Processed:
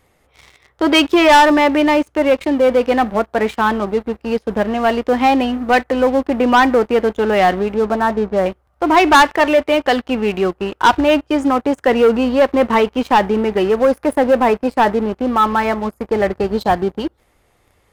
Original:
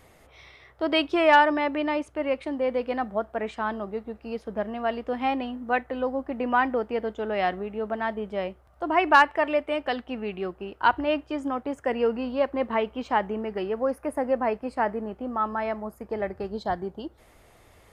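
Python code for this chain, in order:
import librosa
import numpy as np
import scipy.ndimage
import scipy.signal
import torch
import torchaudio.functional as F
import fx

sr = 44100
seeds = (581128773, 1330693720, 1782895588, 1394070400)

y = fx.lowpass(x, sr, hz=1600.0, slope=24, at=(7.74, 8.46))
y = fx.notch(y, sr, hz=650.0, q=12.0)
y = fx.leveller(y, sr, passes=3)
y = F.gain(torch.from_numpy(y), 3.0).numpy()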